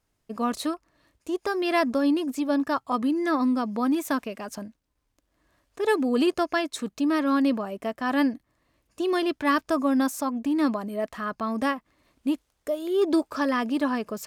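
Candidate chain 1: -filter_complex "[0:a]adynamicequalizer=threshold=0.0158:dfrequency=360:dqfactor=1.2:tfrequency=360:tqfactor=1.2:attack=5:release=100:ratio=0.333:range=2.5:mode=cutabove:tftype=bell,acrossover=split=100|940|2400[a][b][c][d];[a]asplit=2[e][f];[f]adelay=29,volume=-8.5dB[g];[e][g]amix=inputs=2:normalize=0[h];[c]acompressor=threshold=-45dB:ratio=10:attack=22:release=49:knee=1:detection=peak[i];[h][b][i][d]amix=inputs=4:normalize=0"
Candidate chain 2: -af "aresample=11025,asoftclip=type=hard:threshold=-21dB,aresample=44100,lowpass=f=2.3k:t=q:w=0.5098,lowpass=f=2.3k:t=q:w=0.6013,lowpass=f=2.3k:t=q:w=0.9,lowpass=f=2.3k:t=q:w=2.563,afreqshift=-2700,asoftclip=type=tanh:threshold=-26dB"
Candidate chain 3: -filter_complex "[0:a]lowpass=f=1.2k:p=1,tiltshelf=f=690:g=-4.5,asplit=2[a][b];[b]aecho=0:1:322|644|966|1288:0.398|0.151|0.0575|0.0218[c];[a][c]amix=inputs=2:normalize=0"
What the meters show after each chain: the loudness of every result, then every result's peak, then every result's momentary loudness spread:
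-28.5, -28.5, -28.0 LUFS; -15.0, -26.0, -12.5 dBFS; 8, 7, 10 LU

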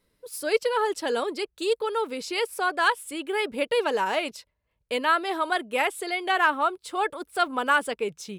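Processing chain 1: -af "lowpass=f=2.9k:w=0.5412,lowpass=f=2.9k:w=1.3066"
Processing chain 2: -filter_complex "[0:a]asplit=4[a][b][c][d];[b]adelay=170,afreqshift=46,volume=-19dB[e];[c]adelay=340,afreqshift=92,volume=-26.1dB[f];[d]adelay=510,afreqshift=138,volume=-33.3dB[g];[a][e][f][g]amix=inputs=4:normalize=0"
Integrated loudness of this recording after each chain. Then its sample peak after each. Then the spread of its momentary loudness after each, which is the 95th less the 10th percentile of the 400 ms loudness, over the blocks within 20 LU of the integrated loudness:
-26.5, -26.0 LUFS; -9.0, -9.0 dBFS; 8, 8 LU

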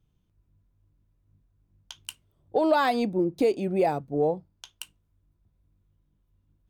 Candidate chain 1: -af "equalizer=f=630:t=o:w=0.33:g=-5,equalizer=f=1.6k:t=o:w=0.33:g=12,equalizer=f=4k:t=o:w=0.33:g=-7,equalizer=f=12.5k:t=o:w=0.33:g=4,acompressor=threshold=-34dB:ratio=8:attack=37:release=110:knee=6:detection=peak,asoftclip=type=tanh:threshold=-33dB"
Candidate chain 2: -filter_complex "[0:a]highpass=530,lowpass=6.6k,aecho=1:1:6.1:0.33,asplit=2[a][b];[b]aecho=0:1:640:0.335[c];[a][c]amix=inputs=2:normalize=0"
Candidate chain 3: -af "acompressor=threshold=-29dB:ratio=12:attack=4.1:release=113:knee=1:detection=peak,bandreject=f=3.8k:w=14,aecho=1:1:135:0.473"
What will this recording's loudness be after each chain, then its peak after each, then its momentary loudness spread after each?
-40.5, -29.0, -35.0 LUFS; -33.0, -12.5, -18.0 dBFS; 13, 18, 13 LU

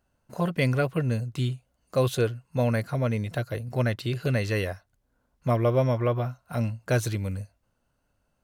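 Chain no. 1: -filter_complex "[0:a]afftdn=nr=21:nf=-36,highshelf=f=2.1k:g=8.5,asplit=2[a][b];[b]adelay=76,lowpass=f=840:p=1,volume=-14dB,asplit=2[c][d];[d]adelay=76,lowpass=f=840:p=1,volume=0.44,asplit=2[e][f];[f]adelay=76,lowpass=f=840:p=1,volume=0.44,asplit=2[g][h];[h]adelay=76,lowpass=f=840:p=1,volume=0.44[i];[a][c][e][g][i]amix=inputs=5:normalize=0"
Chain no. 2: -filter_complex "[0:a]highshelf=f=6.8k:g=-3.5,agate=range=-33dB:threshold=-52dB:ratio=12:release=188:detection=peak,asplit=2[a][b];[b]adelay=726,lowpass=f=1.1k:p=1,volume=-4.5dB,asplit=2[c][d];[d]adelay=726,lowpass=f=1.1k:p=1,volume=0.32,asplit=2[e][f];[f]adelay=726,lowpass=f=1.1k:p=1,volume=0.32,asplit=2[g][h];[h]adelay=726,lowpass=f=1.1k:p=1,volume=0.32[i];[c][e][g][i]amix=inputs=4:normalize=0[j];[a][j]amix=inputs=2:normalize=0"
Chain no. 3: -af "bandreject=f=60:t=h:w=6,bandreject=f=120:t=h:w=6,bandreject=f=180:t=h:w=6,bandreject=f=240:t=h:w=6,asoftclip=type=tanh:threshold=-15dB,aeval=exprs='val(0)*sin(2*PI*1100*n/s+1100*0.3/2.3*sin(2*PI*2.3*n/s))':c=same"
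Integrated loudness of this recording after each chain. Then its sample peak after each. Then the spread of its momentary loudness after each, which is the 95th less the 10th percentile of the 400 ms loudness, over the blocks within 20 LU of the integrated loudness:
-26.5, -27.0, -30.5 LUFS; -10.5, -11.5, -16.0 dBFS; 9, 8, 8 LU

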